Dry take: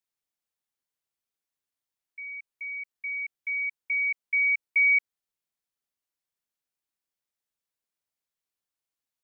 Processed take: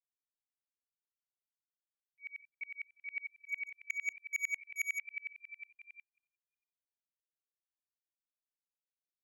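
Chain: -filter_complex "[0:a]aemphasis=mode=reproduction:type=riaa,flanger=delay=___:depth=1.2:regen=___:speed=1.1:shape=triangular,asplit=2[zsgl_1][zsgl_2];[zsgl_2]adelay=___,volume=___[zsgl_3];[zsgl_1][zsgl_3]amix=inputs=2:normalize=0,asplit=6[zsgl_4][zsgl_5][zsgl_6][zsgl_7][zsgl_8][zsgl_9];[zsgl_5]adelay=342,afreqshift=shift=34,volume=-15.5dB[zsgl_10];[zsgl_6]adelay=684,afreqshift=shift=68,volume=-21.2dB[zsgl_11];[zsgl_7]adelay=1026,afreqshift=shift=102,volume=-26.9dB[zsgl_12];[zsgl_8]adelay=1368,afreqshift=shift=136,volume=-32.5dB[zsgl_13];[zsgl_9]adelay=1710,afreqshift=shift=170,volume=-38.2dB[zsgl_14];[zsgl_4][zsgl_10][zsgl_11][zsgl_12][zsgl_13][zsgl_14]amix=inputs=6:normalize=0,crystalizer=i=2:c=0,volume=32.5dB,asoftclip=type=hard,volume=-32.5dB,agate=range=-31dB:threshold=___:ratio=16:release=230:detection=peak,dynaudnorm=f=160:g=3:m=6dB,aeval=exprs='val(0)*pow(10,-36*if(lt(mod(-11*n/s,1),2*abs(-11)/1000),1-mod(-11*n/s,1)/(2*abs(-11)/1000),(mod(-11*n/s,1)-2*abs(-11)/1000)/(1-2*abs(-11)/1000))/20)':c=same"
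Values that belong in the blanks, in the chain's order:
4.6, -81, 36, -14dB, -54dB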